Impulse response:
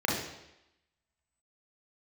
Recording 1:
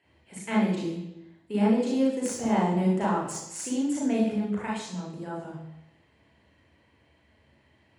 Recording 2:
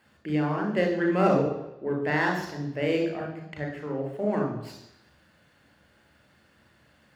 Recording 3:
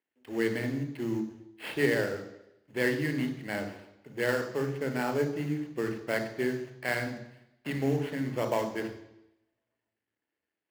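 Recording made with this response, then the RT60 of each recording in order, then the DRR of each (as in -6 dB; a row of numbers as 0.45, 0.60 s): 1; 0.90, 0.90, 0.90 s; -4.0, 1.0, 6.0 dB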